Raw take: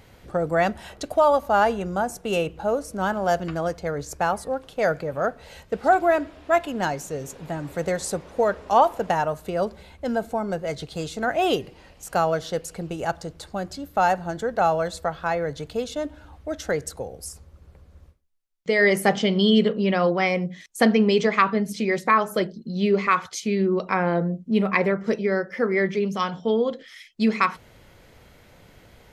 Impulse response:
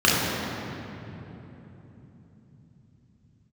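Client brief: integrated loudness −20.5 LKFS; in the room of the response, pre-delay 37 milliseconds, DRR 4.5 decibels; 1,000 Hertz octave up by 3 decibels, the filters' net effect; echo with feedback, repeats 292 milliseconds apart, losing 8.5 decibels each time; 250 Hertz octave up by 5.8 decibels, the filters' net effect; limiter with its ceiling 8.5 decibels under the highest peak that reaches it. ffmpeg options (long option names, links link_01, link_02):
-filter_complex "[0:a]equalizer=frequency=250:width_type=o:gain=7.5,equalizer=frequency=1000:width_type=o:gain=3.5,alimiter=limit=-9.5dB:level=0:latency=1,aecho=1:1:292|584|876|1168:0.376|0.143|0.0543|0.0206,asplit=2[link_01][link_02];[1:a]atrim=start_sample=2205,adelay=37[link_03];[link_02][link_03]afir=irnorm=-1:irlink=0,volume=-26dB[link_04];[link_01][link_04]amix=inputs=2:normalize=0,volume=-2dB"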